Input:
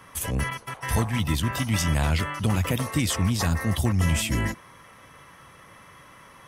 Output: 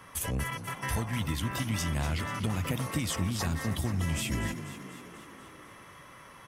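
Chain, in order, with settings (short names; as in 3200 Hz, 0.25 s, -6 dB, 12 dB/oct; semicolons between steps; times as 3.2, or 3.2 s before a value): compressor 2.5:1, threshold -28 dBFS, peak gain reduction 7 dB; on a send: frequency-shifting echo 0.244 s, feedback 62%, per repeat +38 Hz, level -12 dB; on the sum: gain -2 dB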